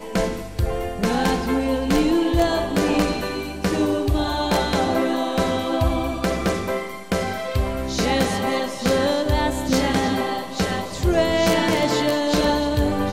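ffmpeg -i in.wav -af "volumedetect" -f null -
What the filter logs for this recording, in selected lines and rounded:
mean_volume: -21.2 dB
max_volume: -8.4 dB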